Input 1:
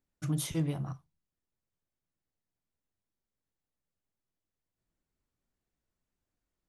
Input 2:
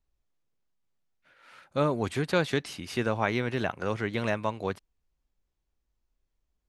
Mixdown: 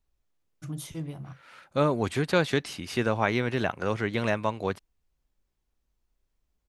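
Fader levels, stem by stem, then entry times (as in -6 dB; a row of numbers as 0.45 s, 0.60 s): -4.5 dB, +2.0 dB; 0.40 s, 0.00 s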